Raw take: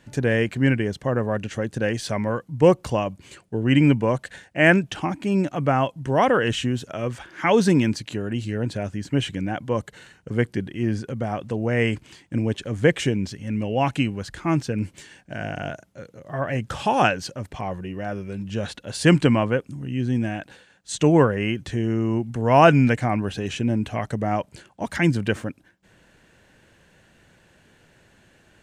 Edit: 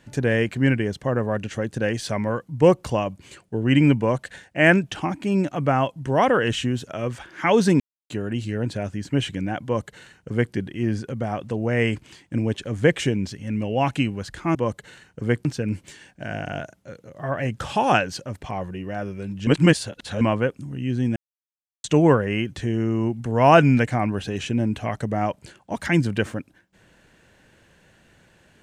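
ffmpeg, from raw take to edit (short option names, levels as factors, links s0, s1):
-filter_complex "[0:a]asplit=9[s0][s1][s2][s3][s4][s5][s6][s7][s8];[s0]atrim=end=7.8,asetpts=PTS-STARTPTS,afade=t=out:st=7.796:d=0.004:c=hsin[s9];[s1]atrim=start=7.8:end=8.1,asetpts=PTS-STARTPTS,volume=0[s10];[s2]atrim=start=8.1:end=14.552,asetpts=PTS-STARTPTS,afade=t=in:d=0.004:c=hsin[s11];[s3]atrim=start=9.638:end=10.542[s12];[s4]atrim=start=14.548:end=18.572[s13];[s5]atrim=start=18.568:end=19.312,asetpts=PTS-STARTPTS,areverse[s14];[s6]atrim=start=19.308:end=20.26,asetpts=PTS-STARTPTS,afade=t=out:st=0.948:d=0.004:c=hsin[s15];[s7]atrim=start=20.26:end=20.94,asetpts=PTS-STARTPTS,volume=0[s16];[s8]atrim=start=20.94,asetpts=PTS-STARTPTS,afade=t=in:d=0.004:c=hsin[s17];[s9][s10][s11]concat=n=3:v=0:a=1[s18];[s18][s12]acrossfade=d=0.004:c1=hsin:c2=hsin[s19];[s19][s13]acrossfade=d=0.004:c1=hsin:c2=hsin[s20];[s20][s14]acrossfade=d=0.004:c1=hsin:c2=hsin[s21];[s15][s16][s17]concat=n=3:v=0:a=1[s22];[s21][s22]acrossfade=d=0.004:c1=hsin:c2=hsin"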